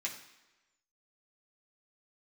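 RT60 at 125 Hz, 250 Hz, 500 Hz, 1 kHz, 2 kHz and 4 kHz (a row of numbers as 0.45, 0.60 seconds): 0.85, 1.0, 1.1, 1.1, 1.1, 1.0 seconds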